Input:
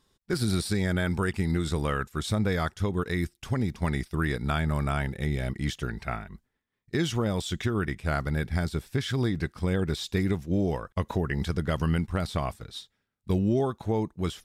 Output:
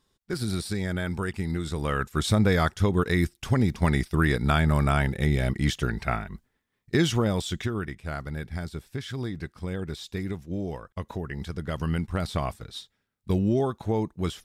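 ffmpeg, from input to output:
ffmpeg -i in.wav -af "volume=11.5dB,afade=type=in:start_time=1.76:duration=0.42:silence=0.421697,afade=type=out:start_time=6.95:duration=0.99:silence=0.298538,afade=type=in:start_time=11.53:duration=0.77:silence=0.473151" out.wav

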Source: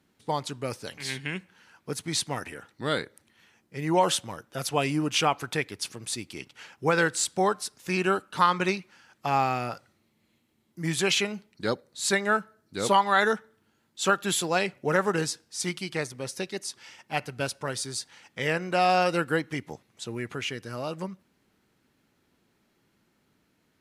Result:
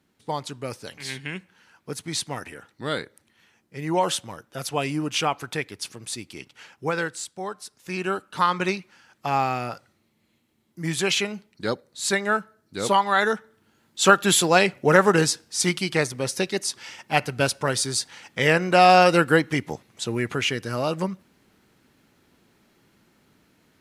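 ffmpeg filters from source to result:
ffmpeg -i in.wav -af "volume=18dB,afade=type=out:start_time=6.69:duration=0.66:silence=0.316228,afade=type=in:start_time=7.35:duration=1.28:silence=0.266073,afade=type=in:start_time=13.33:duration=0.69:silence=0.473151" out.wav

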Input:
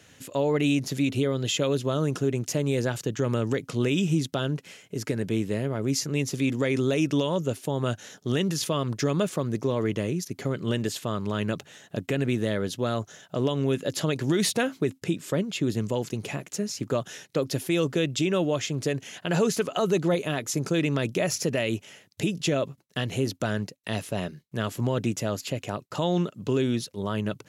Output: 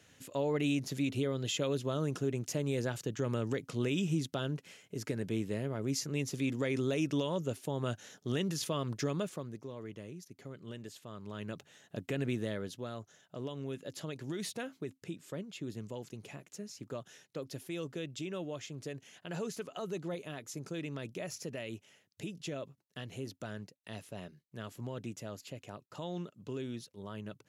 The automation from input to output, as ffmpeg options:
ffmpeg -i in.wav -af "volume=2.5dB,afade=type=out:start_time=9.01:duration=0.59:silence=0.298538,afade=type=in:start_time=11.07:duration=1.19:silence=0.298538,afade=type=out:start_time=12.26:duration=0.64:silence=0.446684" out.wav

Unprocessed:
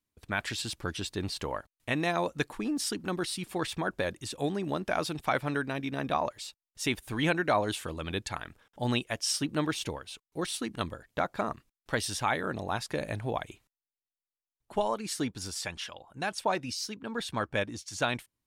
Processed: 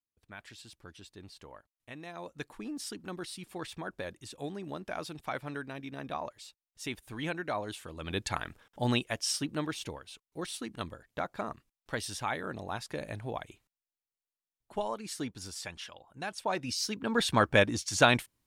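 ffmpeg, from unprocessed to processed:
ffmpeg -i in.wav -af "volume=15dB,afade=type=in:start_time=2.11:duration=0.47:silence=0.398107,afade=type=in:start_time=7.92:duration=0.44:silence=0.281838,afade=type=out:start_time=8.36:duration=1.31:silence=0.398107,afade=type=in:start_time=16.44:duration=0.8:silence=0.251189" out.wav

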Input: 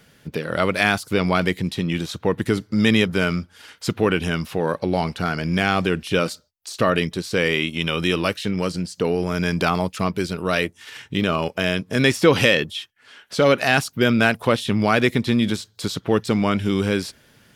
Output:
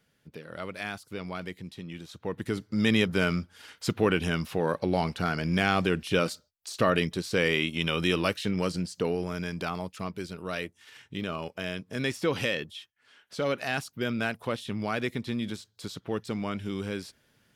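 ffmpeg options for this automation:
ffmpeg -i in.wav -af "volume=-5dB,afade=type=in:start_time=2.04:duration=1.15:silence=0.251189,afade=type=out:start_time=8.83:duration=0.67:silence=0.421697" out.wav

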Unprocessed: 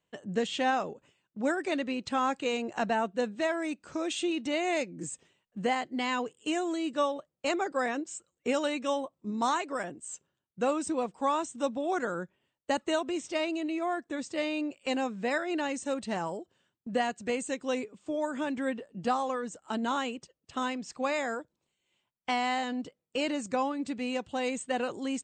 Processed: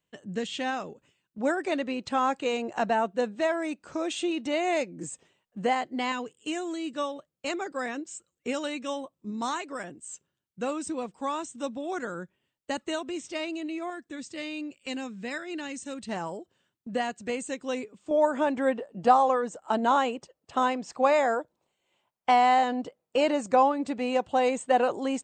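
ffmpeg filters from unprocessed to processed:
ffmpeg -i in.wav -af "asetnsamples=nb_out_samples=441:pad=0,asendcmd='1.38 equalizer g 4;6.12 equalizer g -4;13.9 equalizer g -10;16.09 equalizer g -0.5;18.11 equalizer g 11',equalizer=frequency=730:width_type=o:width=1.8:gain=-4.5" out.wav

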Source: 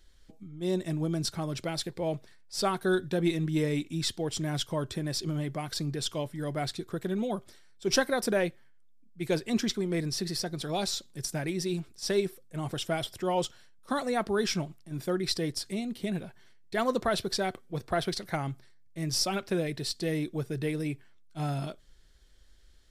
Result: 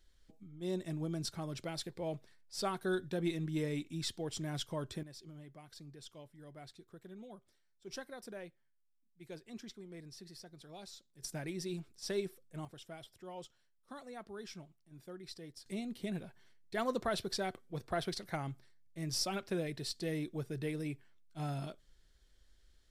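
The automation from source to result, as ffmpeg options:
ffmpeg -i in.wav -af "asetnsamples=nb_out_samples=441:pad=0,asendcmd='5.03 volume volume -20dB;11.22 volume volume -9dB;12.65 volume volume -19dB;15.66 volume volume -7dB',volume=-8dB" out.wav

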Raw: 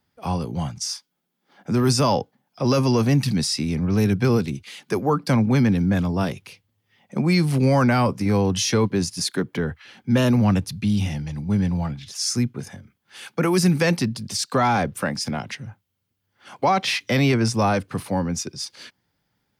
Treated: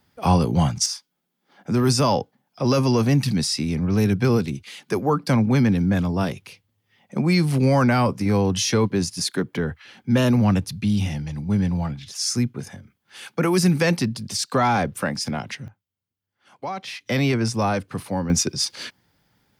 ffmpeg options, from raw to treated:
ffmpeg -i in.wav -af "asetnsamples=nb_out_samples=441:pad=0,asendcmd='0.86 volume volume 0dB;15.68 volume volume -11dB;17.06 volume volume -2dB;18.3 volume volume 7.5dB',volume=7.5dB" out.wav

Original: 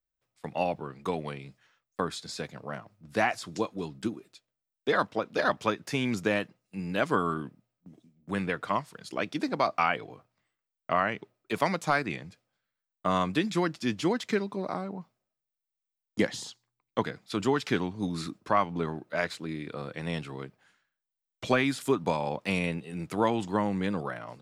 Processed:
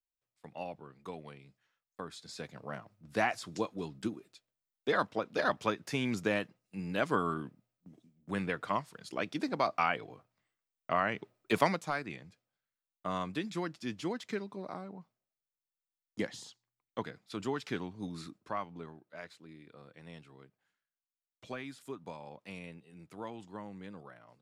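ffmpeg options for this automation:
ffmpeg -i in.wav -af "volume=2dB,afade=type=in:start_time=2.05:duration=0.65:silence=0.375837,afade=type=in:start_time=11.02:duration=0.5:silence=0.501187,afade=type=out:start_time=11.52:duration=0.33:silence=0.281838,afade=type=out:start_time=18.09:duration=0.92:silence=0.398107" out.wav

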